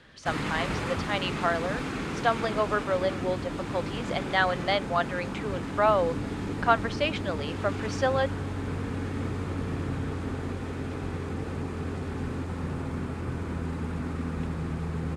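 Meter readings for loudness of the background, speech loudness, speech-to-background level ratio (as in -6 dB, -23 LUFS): -33.0 LUFS, -29.0 LUFS, 4.0 dB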